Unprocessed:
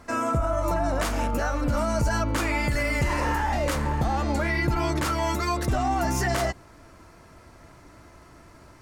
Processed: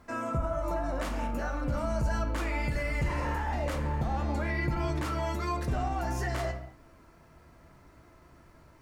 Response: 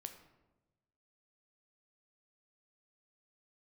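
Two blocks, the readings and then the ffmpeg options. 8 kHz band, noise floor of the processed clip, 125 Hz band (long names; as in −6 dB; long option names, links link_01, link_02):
−12.5 dB, −57 dBFS, −4.5 dB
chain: -filter_complex "[0:a]bass=frequency=250:gain=2,treble=frequency=4000:gain=-5,acrusher=bits=10:mix=0:aa=0.000001[link_01];[1:a]atrim=start_sample=2205,afade=type=out:start_time=0.29:duration=0.01,atrim=end_sample=13230,asetrate=43659,aresample=44100[link_02];[link_01][link_02]afir=irnorm=-1:irlink=0,volume=-3dB"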